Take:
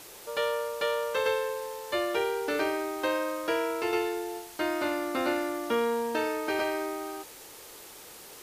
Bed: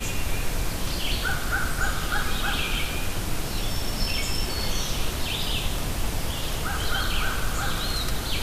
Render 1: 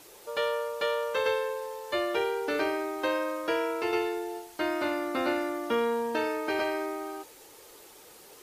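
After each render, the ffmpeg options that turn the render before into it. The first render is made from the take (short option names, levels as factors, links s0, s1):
-af "afftdn=nr=6:nf=-48"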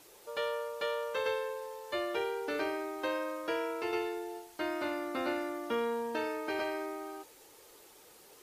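-af "volume=0.531"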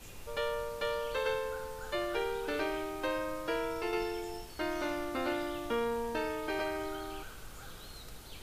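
-filter_complex "[1:a]volume=0.0794[s0];[0:a][s0]amix=inputs=2:normalize=0"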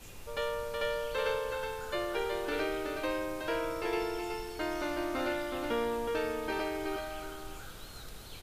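-af "aecho=1:1:371:0.562"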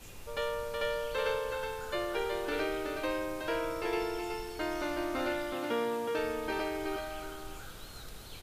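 -filter_complex "[0:a]asettb=1/sr,asplit=3[s0][s1][s2];[s0]atrim=end=5.534[s3];[s1]atrim=start=5.53:end=6.19,asetpts=PTS-STARTPTS,afade=t=in:d=0.004:c=qsin,afade=t=out:st=0.656:d=0.004:c=qsin,highpass=f=110:w=0.5412,highpass=f=110:w=1.3066[s4];[s2]atrim=start=6.186[s5];[s3][s4]acrossfade=d=0.004:c1=hsin:c2=qsin[s6];[s6][s5]acrossfade=d=0.004:c1=qsin:c2=hsin"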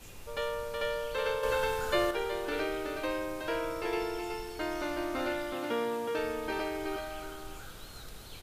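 -filter_complex "[0:a]asettb=1/sr,asplit=3[s0][s1][s2];[s0]atrim=end=1.434[s3];[s1]atrim=start=1.43:end=2.11,asetpts=PTS-STARTPTS,afade=t=in:d=0.004:c=qsin,afade=t=out:st=0.676:d=0.004:c=qsin,acontrast=63[s4];[s2]atrim=start=2.106[s5];[s3][s4]acrossfade=d=0.004:c1=hsin:c2=qsin[s6];[s6][s5]acrossfade=d=0.004:c1=qsin:c2=hsin"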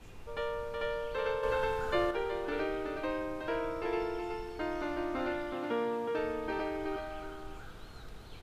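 -af "lowpass=f=1800:p=1,bandreject=f=560:w=12"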